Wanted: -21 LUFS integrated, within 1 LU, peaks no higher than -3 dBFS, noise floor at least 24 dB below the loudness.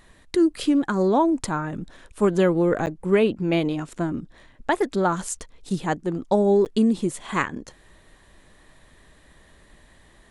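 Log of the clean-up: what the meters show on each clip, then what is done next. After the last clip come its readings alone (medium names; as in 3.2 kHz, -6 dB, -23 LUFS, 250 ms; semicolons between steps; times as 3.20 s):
dropouts 2; longest dropout 9.4 ms; loudness -23.0 LUFS; peak level -7.5 dBFS; loudness target -21.0 LUFS
-> interpolate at 2.86/6.65 s, 9.4 ms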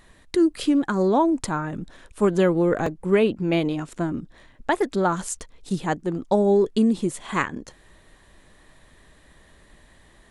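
dropouts 0; loudness -23.0 LUFS; peak level -7.5 dBFS; loudness target -21.0 LUFS
-> trim +2 dB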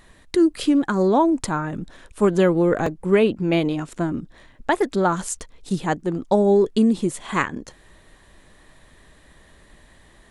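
loudness -21.0 LUFS; peak level -5.5 dBFS; noise floor -53 dBFS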